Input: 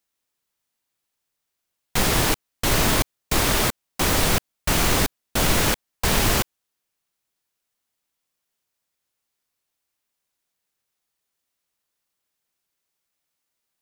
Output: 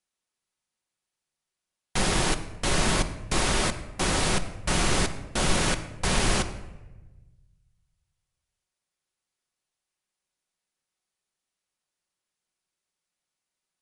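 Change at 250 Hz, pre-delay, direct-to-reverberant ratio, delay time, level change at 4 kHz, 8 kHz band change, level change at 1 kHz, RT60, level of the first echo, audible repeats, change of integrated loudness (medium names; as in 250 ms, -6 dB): -3.5 dB, 5 ms, 8.0 dB, no echo, -4.0 dB, -4.5 dB, -3.5 dB, 1.1 s, no echo, no echo, -4.5 dB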